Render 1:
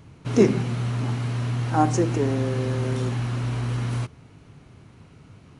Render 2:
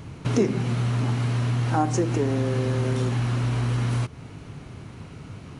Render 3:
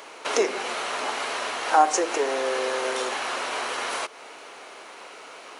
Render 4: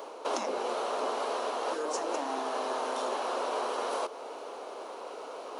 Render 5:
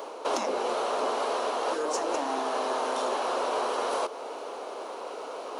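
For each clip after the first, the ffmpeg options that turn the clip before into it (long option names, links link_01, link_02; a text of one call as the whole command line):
ffmpeg -i in.wav -af "acompressor=threshold=-33dB:ratio=2.5,volume=8.5dB" out.wav
ffmpeg -i in.wav -af "highpass=frequency=500:width=0.5412,highpass=frequency=500:width=1.3066,volume=8dB" out.wav
ffmpeg -i in.wav -af "afftfilt=real='re*lt(hypot(re,im),0.2)':imag='im*lt(hypot(re,im),0.2)':win_size=1024:overlap=0.75,equalizer=frequency=125:width_type=o:width=1:gain=-8,equalizer=frequency=250:width_type=o:width=1:gain=4,equalizer=frequency=500:width_type=o:width=1:gain=9,equalizer=frequency=1000:width_type=o:width=1:gain=5,equalizer=frequency=2000:width_type=o:width=1:gain=-11,equalizer=frequency=8000:width_type=o:width=1:gain=-5,areverse,acompressor=mode=upward:threshold=-29dB:ratio=2.5,areverse,volume=-6dB" out.wav
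ffmpeg -i in.wav -af "asoftclip=type=tanh:threshold=-19dB,volume=4dB" out.wav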